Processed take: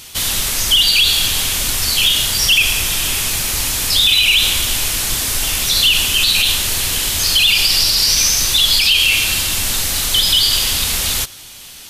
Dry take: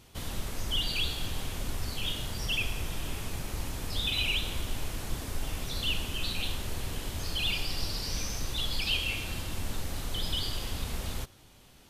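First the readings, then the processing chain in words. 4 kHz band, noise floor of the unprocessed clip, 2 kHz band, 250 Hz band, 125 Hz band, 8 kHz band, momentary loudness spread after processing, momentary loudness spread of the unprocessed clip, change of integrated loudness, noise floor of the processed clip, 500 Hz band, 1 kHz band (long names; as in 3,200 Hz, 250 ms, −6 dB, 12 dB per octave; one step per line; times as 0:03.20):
+21.0 dB, −56 dBFS, +19.0 dB, +8.0 dB, +7.5 dB, +25.5 dB, 6 LU, 9 LU, +20.5 dB, −37 dBFS, +9.5 dB, +13.5 dB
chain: tilt shelving filter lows −9.5 dB, about 1,500 Hz
boost into a limiter +20 dB
level −2.5 dB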